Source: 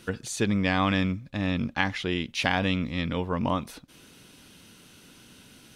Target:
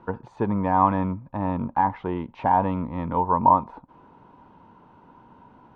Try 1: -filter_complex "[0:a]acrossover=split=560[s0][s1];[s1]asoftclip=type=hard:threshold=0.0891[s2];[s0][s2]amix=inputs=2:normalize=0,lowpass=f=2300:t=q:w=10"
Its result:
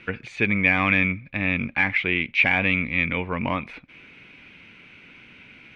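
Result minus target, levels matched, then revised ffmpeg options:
2 kHz band +18.0 dB
-filter_complex "[0:a]acrossover=split=560[s0][s1];[s1]asoftclip=type=hard:threshold=0.0891[s2];[s0][s2]amix=inputs=2:normalize=0,lowpass=f=940:t=q:w=10"

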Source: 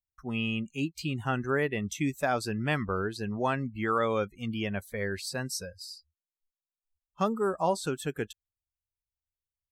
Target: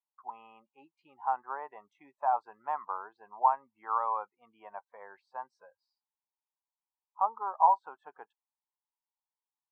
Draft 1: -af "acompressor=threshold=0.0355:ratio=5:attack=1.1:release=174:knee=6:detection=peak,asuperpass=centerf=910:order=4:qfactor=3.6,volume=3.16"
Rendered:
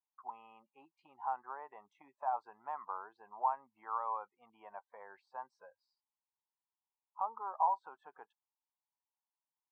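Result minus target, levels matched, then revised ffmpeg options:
compression: peak gain reduction +9.5 dB
-af "asuperpass=centerf=910:order=4:qfactor=3.6,volume=3.16"

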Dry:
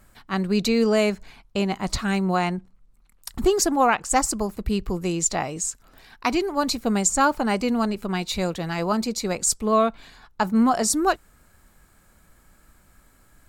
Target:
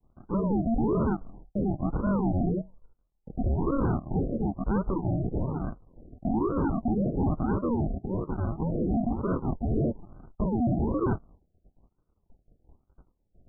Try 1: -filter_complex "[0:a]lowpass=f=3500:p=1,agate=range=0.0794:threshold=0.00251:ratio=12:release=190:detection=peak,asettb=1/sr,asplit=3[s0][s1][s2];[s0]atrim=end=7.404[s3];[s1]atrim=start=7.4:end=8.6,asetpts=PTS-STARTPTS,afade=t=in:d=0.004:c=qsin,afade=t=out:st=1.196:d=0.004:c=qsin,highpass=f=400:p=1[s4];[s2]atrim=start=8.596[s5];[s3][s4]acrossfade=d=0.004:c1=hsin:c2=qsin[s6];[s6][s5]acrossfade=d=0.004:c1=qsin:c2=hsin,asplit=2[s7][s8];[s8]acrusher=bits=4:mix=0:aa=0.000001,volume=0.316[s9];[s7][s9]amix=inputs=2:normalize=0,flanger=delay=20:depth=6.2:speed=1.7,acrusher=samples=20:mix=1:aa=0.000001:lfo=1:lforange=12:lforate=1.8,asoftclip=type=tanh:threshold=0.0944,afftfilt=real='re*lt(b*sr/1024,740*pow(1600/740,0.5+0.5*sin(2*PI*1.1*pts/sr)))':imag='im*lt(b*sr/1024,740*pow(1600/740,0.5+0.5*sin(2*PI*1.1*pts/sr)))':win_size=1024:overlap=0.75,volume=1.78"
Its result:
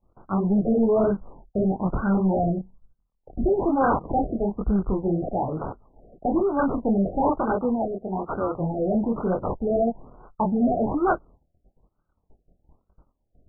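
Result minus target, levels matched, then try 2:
decimation with a swept rate: distortion -17 dB; saturation: distortion -5 dB
-filter_complex "[0:a]lowpass=f=3500:p=1,agate=range=0.0794:threshold=0.00251:ratio=12:release=190:detection=peak,asettb=1/sr,asplit=3[s0][s1][s2];[s0]atrim=end=7.404[s3];[s1]atrim=start=7.4:end=8.6,asetpts=PTS-STARTPTS,afade=t=in:d=0.004:c=qsin,afade=t=out:st=1.196:d=0.004:c=qsin,highpass=f=400:p=1[s4];[s2]atrim=start=8.596[s5];[s3][s4]acrossfade=d=0.004:c1=hsin:c2=qsin[s6];[s6][s5]acrossfade=d=0.004:c1=qsin:c2=hsin,asplit=2[s7][s8];[s8]acrusher=bits=4:mix=0:aa=0.000001,volume=0.316[s9];[s7][s9]amix=inputs=2:normalize=0,flanger=delay=20:depth=6.2:speed=1.7,acrusher=samples=75:mix=1:aa=0.000001:lfo=1:lforange=45:lforate=1.8,asoftclip=type=tanh:threshold=0.0398,afftfilt=real='re*lt(b*sr/1024,740*pow(1600/740,0.5+0.5*sin(2*PI*1.1*pts/sr)))':imag='im*lt(b*sr/1024,740*pow(1600/740,0.5+0.5*sin(2*PI*1.1*pts/sr)))':win_size=1024:overlap=0.75,volume=1.78"

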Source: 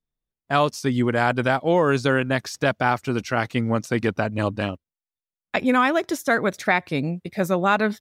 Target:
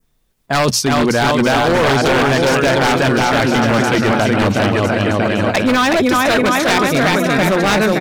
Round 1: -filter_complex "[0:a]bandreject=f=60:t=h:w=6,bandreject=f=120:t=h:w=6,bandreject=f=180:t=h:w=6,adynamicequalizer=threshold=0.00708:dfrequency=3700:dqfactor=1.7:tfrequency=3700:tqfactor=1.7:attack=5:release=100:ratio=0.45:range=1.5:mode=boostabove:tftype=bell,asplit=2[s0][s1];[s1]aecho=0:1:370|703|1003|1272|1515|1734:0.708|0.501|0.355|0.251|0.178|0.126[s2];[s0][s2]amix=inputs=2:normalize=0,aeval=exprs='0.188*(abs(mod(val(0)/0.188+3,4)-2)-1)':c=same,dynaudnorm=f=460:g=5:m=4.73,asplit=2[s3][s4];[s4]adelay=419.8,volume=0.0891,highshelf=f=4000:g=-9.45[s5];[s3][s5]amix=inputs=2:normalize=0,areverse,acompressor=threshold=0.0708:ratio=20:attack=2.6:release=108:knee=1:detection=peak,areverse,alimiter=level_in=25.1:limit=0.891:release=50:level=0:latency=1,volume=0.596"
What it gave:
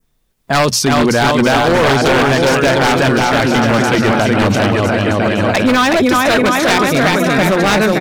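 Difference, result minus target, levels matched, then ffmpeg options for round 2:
compression: peak gain reduction -10.5 dB
-filter_complex "[0:a]bandreject=f=60:t=h:w=6,bandreject=f=120:t=h:w=6,bandreject=f=180:t=h:w=6,adynamicequalizer=threshold=0.00708:dfrequency=3700:dqfactor=1.7:tfrequency=3700:tqfactor=1.7:attack=5:release=100:ratio=0.45:range=1.5:mode=boostabove:tftype=bell,asplit=2[s0][s1];[s1]aecho=0:1:370|703|1003|1272|1515|1734:0.708|0.501|0.355|0.251|0.178|0.126[s2];[s0][s2]amix=inputs=2:normalize=0,aeval=exprs='0.188*(abs(mod(val(0)/0.188+3,4)-2)-1)':c=same,dynaudnorm=f=460:g=5:m=4.73,asplit=2[s3][s4];[s4]adelay=419.8,volume=0.0891,highshelf=f=4000:g=-9.45[s5];[s3][s5]amix=inputs=2:normalize=0,areverse,acompressor=threshold=0.02:ratio=20:attack=2.6:release=108:knee=1:detection=peak,areverse,alimiter=level_in=25.1:limit=0.891:release=50:level=0:latency=1,volume=0.596"

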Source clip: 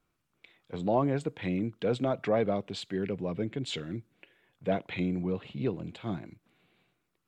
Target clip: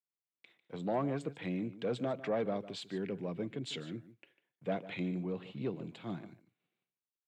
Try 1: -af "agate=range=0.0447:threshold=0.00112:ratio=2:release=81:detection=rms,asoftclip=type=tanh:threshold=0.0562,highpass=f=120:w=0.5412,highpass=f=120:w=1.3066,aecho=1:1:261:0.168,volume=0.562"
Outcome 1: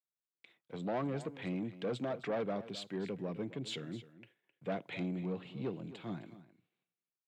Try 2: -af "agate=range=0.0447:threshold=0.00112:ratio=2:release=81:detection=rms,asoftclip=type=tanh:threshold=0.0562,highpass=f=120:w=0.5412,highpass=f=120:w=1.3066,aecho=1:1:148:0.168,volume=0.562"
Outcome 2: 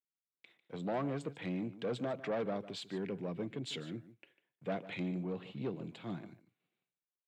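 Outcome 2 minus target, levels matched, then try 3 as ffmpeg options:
saturation: distortion +8 dB
-af "agate=range=0.0447:threshold=0.00112:ratio=2:release=81:detection=rms,asoftclip=type=tanh:threshold=0.112,highpass=f=120:w=0.5412,highpass=f=120:w=1.3066,aecho=1:1:148:0.168,volume=0.562"

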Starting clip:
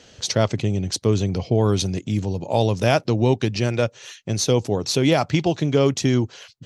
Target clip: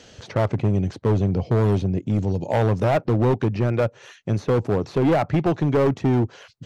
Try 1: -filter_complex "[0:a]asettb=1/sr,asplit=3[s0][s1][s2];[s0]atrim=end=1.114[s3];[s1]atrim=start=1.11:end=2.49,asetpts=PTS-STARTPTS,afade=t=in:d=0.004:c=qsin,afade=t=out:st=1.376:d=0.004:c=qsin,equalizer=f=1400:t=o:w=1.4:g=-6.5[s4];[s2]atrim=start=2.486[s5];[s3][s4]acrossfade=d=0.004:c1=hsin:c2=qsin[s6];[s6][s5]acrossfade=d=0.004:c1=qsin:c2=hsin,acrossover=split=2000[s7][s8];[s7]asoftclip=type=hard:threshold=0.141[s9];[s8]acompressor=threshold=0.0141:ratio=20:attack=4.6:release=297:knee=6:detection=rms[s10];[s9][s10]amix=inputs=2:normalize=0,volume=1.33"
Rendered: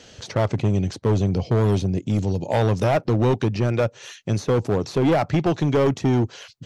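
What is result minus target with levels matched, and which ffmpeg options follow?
compression: peak gain reduction -11 dB
-filter_complex "[0:a]asettb=1/sr,asplit=3[s0][s1][s2];[s0]atrim=end=1.114[s3];[s1]atrim=start=1.11:end=2.49,asetpts=PTS-STARTPTS,afade=t=in:d=0.004:c=qsin,afade=t=out:st=1.376:d=0.004:c=qsin,equalizer=f=1400:t=o:w=1.4:g=-6.5[s4];[s2]atrim=start=2.486[s5];[s3][s4]acrossfade=d=0.004:c1=hsin:c2=qsin[s6];[s6][s5]acrossfade=d=0.004:c1=qsin:c2=hsin,acrossover=split=2000[s7][s8];[s7]asoftclip=type=hard:threshold=0.141[s9];[s8]acompressor=threshold=0.00376:ratio=20:attack=4.6:release=297:knee=6:detection=rms[s10];[s9][s10]amix=inputs=2:normalize=0,volume=1.33"

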